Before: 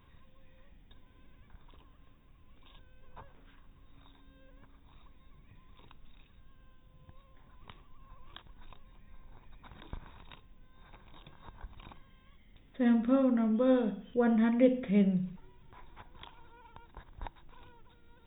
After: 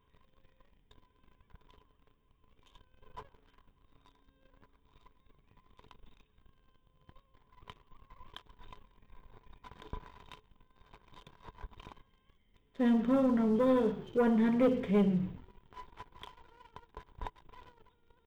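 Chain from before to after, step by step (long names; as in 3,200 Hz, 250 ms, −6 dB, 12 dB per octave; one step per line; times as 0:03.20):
hollow resonant body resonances 430/1,000/3,100 Hz, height 13 dB, ringing for 95 ms
echo with shifted repeats 136 ms, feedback 55%, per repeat −53 Hz, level −21.5 dB
leveller curve on the samples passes 2
level −7.5 dB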